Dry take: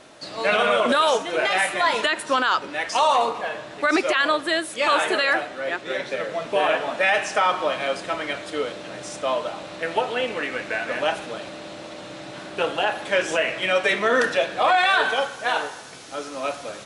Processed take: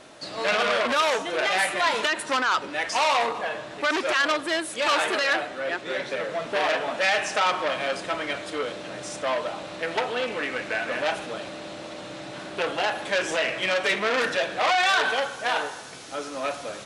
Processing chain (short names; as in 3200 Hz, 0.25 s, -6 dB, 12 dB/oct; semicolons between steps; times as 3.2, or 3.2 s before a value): core saturation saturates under 2800 Hz